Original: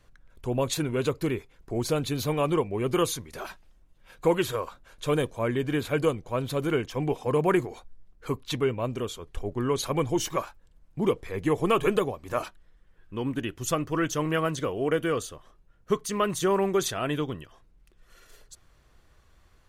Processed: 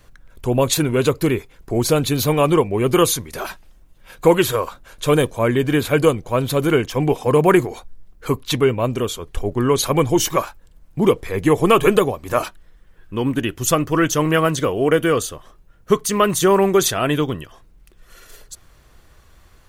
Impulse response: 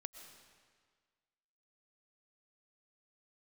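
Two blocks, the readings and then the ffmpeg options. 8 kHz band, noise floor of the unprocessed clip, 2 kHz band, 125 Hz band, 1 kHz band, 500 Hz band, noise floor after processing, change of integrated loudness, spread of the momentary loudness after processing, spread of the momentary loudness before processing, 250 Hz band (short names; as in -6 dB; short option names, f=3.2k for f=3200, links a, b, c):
+12.0 dB, -60 dBFS, +9.5 dB, +9.5 dB, +9.5 dB, +9.5 dB, -51 dBFS, +9.5 dB, 11 LU, 10 LU, +9.5 dB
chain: -filter_complex "[0:a]asplit=2[a][b];[1:a]atrim=start_sample=2205,atrim=end_sample=3528,highshelf=f=10k:g=11[c];[b][c]afir=irnorm=-1:irlink=0,volume=11dB[d];[a][d]amix=inputs=2:normalize=0"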